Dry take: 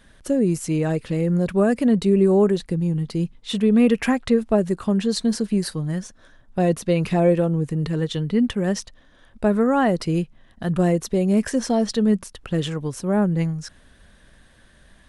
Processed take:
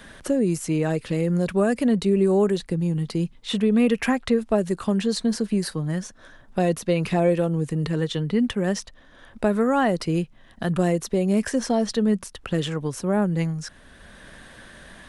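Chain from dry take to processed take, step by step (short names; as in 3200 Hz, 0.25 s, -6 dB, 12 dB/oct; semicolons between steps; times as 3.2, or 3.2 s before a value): low shelf 410 Hz -3.5 dB; three-band squash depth 40%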